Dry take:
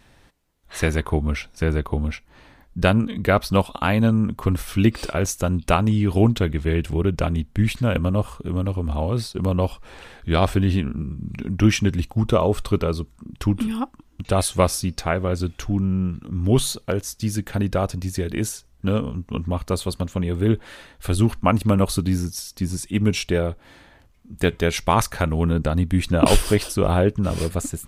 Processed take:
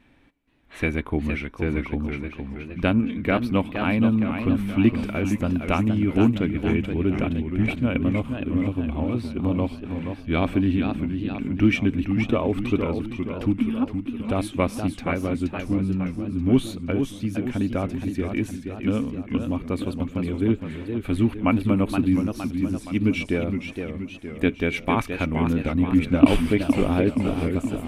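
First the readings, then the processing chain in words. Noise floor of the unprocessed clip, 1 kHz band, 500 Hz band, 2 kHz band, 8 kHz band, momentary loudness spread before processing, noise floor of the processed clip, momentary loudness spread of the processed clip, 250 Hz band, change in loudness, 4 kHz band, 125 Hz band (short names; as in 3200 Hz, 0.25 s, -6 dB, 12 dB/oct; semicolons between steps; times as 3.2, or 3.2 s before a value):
-54 dBFS, -5.0 dB, -4.0 dB, -1.0 dB, under -15 dB, 9 LU, -41 dBFS, 7 LU, +1.5 dB, -2.0 dB, -7.0 dB, -5.0 dB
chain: resonant high shelf 3900 Hz -8 dB, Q 1.5; small resonant body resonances 270/2300 Hz, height 13 dB, ringing for 45 ms; warbling echo 0.469 s, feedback 54%, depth 171 cents, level -7 dB; gain -7 dB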